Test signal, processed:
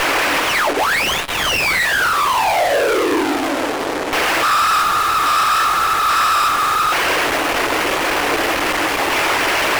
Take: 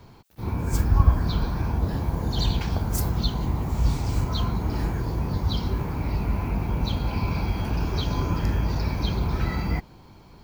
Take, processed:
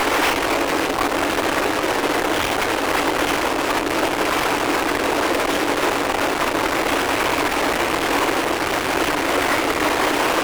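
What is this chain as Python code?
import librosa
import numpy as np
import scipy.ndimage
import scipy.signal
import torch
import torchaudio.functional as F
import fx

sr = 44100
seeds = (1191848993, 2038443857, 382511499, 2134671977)

y = fx.delta_mod(x, sr, bps=16000, step_db=-19.5)
y = fx.whisperise(y, sr, seeds[0])
y = fx.fuzz(y, sr, gain_db=39.0, gate_db=-35.0)
y = scipy.signal.sosfilt(scipy.signal.ellip(4, 1.0, 40, 290.0, 'highpass', fs=sr, output='sos'), y)
y = fx.doubler(y, sr, ms=21.0, db=-13)
y = fx.running_max(y, sr, window=5)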